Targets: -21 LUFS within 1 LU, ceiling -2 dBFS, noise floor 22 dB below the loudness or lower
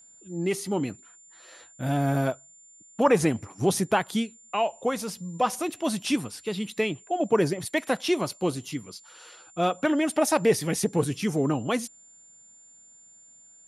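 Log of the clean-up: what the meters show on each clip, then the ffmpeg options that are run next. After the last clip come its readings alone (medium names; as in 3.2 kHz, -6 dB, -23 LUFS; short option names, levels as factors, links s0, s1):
steady tone 7.2 kHz; tone level -51 dBFS; loudness -27.0 LUFS; peak level -9.0 dBFS; loudness target -21.0 LUFS
-> -af "bandreject=f=7200:w=30"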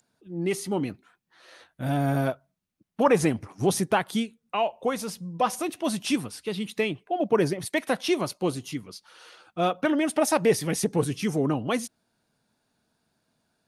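steady tone not found; loudness -26.5 LUFS; peak level -9.5 dBFS; loudness target -21.0 LUFS
-> -af "volume=1.88"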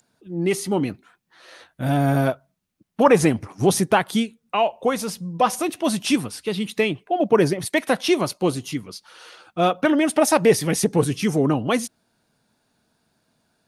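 loudness -21.5 LUFS; peak level -4.0 dBFS; noise floor -73 dBFS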